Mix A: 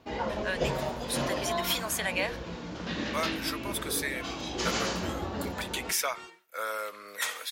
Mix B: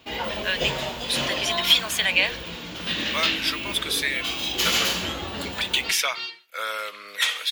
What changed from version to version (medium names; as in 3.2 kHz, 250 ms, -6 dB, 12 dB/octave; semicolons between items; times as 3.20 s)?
first sound: remove low-pass 6.3 kHz 24 dB/octave; second sound: add resonant low-pass 4.5 kHz, resonance Q 7.5; master: add peaking EQ 3.1 kHz +15 dB 1.4 oct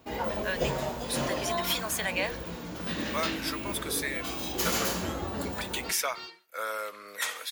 master: add peaking EQ 3.1 kHz -15 dB 1.4 oct